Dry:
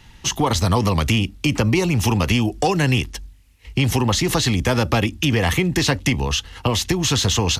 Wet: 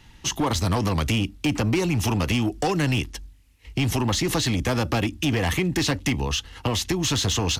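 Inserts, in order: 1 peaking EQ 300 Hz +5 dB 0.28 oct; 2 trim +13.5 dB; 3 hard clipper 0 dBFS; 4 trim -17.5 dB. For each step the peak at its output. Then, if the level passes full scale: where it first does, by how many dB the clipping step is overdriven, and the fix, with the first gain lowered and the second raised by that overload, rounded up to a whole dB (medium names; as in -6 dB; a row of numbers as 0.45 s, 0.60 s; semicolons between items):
-5.0 dBFS, +8.5 dBFS, 0.0 dBFS, -17.5 dBFS; step 2, 8.5 dB; step 2 +4.5 dB, step 4 -8.5 dB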